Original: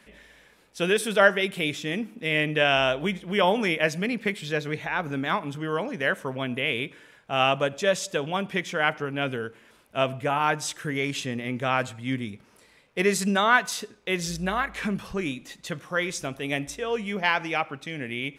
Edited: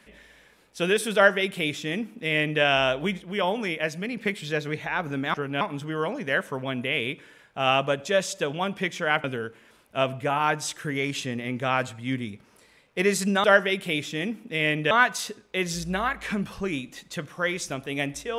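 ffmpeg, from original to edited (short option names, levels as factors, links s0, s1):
-filter_complex "[0:a]asplit=8[s0][s1][s2][s3][s4][s5][s6][s7];[s0]atrim=end=3.222[s8];[s1]atrim=start=3.218:end=4.172,asetpts=PTS-STARTPTS,volume=0.631[s9];[s2]atrim=start=4.168:end=5.342[s10];[s3]atrim=start=8.968:end=9.242[s11];[s4]atrim=start=5.338:end=8.972[s12];[s5]atrim=start=9.238:end=13.442[s13];[s6]atrim=start=1.148:end=2.622[s14];[s7]atrim=start=13.438[s15];[s8][s9]acrossfade=d=0.004:c1=hsin:c2=hsin[s16];[s16][s10]acrossfade=d=0.004:c1=hsin:c2=hsin[s17];[s17][s11]acrossfade=d=0.004:c1=hsin:c2=hsin[s18];[s18][s12]acrossfade=d=0.004:c1=hsin:c2=hsin[s19];[s19][s13]acrossfade=d=0.004:c1=hsin:c2=hsin[s20];[s20][s14]acrossfade=d=0.004:c1=hsin:c2=hsin[s21];[s21][s15]acrossfade=d=0.004:c1=hsin:c2=hsin"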